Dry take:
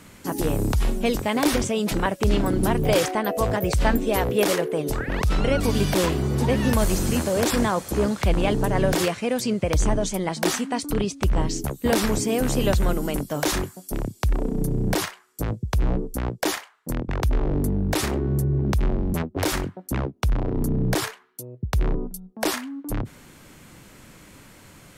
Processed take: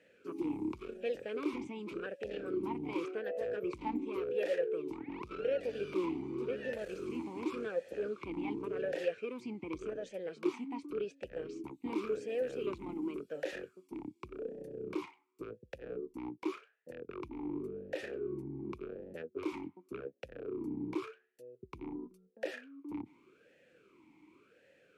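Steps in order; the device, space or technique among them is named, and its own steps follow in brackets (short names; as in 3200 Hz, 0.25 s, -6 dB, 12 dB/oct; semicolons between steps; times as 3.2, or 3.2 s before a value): talk box (tube stage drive 14 dB, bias 0.4; vowel sweep e-u 0.89 Hz); gain -2 dB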